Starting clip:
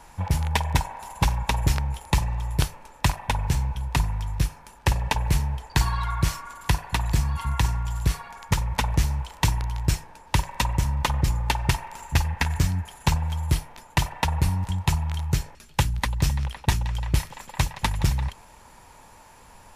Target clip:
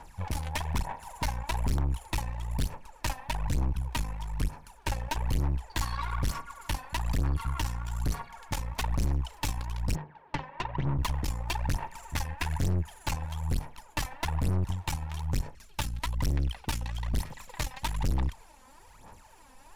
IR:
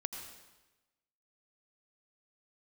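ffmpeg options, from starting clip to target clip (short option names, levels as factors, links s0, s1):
-filter_complex "[0:a]aphaser=in_gain=1:out_gain=1:delay=3.9:decay=0.68:speed=1.1:type=sinusoidal,asplit=3[s0][s1][s2];[s0]afade=t=out:st=9.94:d=0.02[s3];[s1]highpass=130,equalizer=f=150:t=q:w=4:g=8,equalizer=f=400:t=q:w=4:g=5,equalizer=f=2500:t=q:w=4:g=-5,lowpass=f=2900:w=0.5412,lowpass=f=2900:w=1.3066,afade=t=in:st=9.94:d=0.02,afade=t=out:st=10.97:d=0.02[s4];[s2]afade=t=in:st=10.97:d=0.02[s5];[s3][s4][s5]amix=inputs=3:normalize=0,aeval=exprs='(tanh(11.2*val(0)+0.7)-tanh(0.7))/11.2':c=same,volume=0.631"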